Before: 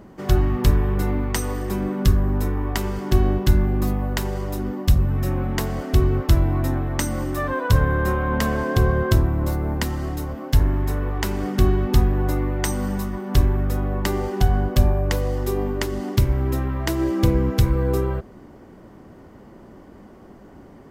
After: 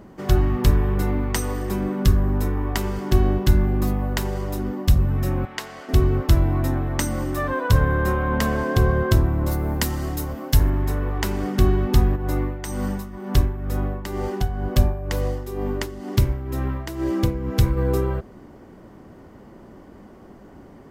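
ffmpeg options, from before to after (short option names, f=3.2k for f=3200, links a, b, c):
-filter_complex "[0:a]asettb=1/sr,asplit=3[a][b][c];[a]atrim=end=5.454[d];[b]atrim=start=5.45:end=5.89,asetpts=PTS-STARTPTS,afade=t=in:d=0.004:c=qsin,afade=t=out:st=0.436:d=0.004:c=qsin,bandpass=f=2.8k:t=q:w=0.52[e];[c]atrim=start=5.886[f];[d][e]acrossfade=d=0.004:c1=hsin:c2=qsin[g];[g][f]acrossfade=d=0.004:c1=qsin:c2=hsin,asettb=1/sr,asplit=3[h][i][j];[h]atrim=end=9.514[k];[i]atrim=start=9.51:end=10.7,asetpts=PTS-STARTPTS,afade=t=in:d=0.004:c=qsin,afade=t=out:st=1.186:d=0.004:c=qsin,highshelf=f=4.9k:g=8.5[l];[j]atrim=start=10.696[m];[k][l]acrossfade=d=0.004:c1=hsin:c2=qsin[n];[n][m]acrossfade=d=0.004:c1=qsin:c2=hsin,asplit=3[o][p][q];[o]afade=t=out:st=12.15:d=0.02[r];[p]tremolo=f=2.1:d=0.66,afade=t=in:st=12.15:d=0.02,afade=t=out:st=17.76:d=0.02[s];[q]afade=t=in:st=17.76:d=0.02[t];[r][s][t]amix=inputs=3:normalize=0"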